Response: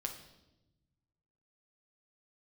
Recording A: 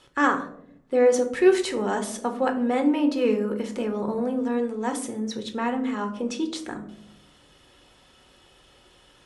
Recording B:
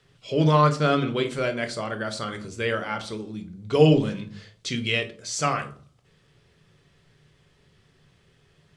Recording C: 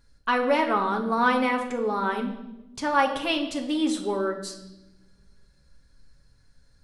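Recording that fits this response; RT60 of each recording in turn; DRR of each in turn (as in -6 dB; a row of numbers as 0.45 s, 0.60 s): C; 0.75 s, 0.45 s, 0.95 s; 5.0 dB, 5.5 dB, 2.5 dB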